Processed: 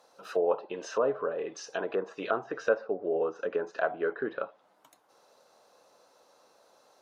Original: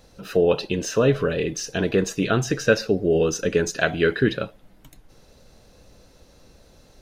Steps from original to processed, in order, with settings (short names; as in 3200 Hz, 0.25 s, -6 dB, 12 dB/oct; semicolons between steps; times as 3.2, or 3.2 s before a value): HPF 730 Hz 12 dB/oct; resonant high shelf 1500 Hz -8 dB, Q 1.5; treble ducked by the level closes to 1100 Hz, closed at -27 dBFS